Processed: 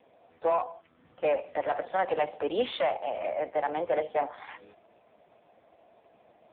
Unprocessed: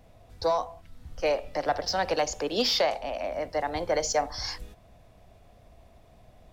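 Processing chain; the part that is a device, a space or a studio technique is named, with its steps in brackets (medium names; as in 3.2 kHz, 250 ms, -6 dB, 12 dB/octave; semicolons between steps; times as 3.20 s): telephone (band-pass 290–3100 Hz; saturation -22 dBFS, distortion -14 dB; trim +3.5 dB; AMR-NB 5.15 kbps 8 kHz)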